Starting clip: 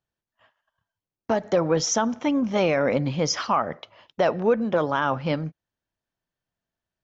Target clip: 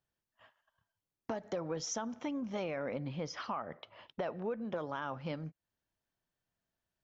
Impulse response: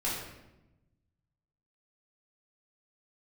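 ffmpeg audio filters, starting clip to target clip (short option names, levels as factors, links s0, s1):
-filter_complex "[0:a]acompressor=threshold=0.01:ratio=2.5,asettb=1/sr,asplit=3[s0][s1][s2];[s0]atrim=end=2.644[s3];[s1]atrim=start=2.64:end=4.7,asetpts=PTS-STARTPTS,afade=t=in:d=0.004:c=qsin,afade=t=out:st=2.056:d=0.004:c=qsin,lowpass=4100[s4];[s2]atrim=start=4.696[s5];[s3][s4]acrossfade=d=0.004:c1=hsin:c2=qsin[s6];[s6][s5]acrossfade=d=0.004:c1=qsin:c2=hsin,volume=0.794"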